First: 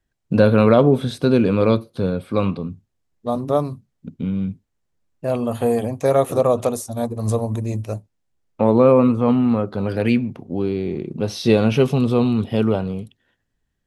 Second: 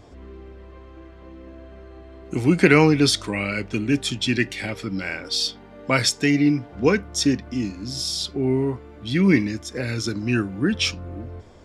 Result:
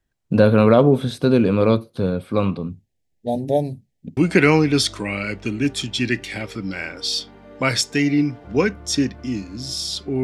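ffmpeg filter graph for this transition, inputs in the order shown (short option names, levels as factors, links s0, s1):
-filter_complex "[0:a]asettb=1/sr,asplit=3[s0][s1][s2];[s0]atrim=end=2.724[s3];[s1]atrim=start=2.72:end=4.17,asetpts=PTS-STARTPTS,afade=t=in:d=0.004:c=qsin,afade=t=out:st=1.446:d=0.004:c=qsin,asuperstop=centerf=1200:order=8:qfactor=1.4[s4];[s2]atrim=start=4.166[s5];[s3][s4]acrossfade=d=0.004:c1=hsin:c2=qsin[s6];[s6][s5]acrossfade=d=0.004:c1=qsin:c2=hsin,apad=whole_dur=10.23,atrim=end=10.23,atrim=end=4.172[s7];[1:a]atrim=start=2.448:end=8.51[s8];[s7][s8]acrossfade=d=0.004:c1=hsin:c2=hsin"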